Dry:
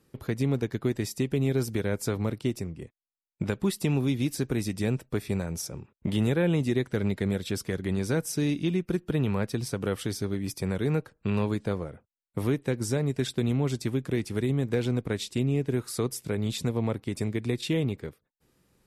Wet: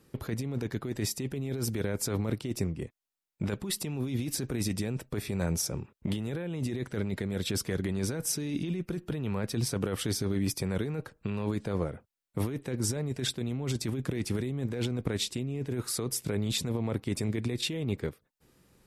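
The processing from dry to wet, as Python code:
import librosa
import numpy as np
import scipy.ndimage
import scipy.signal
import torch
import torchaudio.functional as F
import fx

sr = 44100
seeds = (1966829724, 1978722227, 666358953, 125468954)

y = fx.over_compress(x, sr, threshold_db=-31.0, ratio=-1.0)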